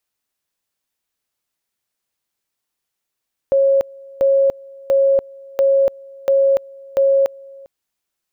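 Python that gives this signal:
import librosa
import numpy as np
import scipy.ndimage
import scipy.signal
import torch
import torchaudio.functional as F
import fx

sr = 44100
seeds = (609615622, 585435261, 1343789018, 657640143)

y = fx.two_level_tone(sr, hz=547.0, level_db=-10.5, drop_db=25.0, high_s=0.29, low_s=0.4, rounds=6)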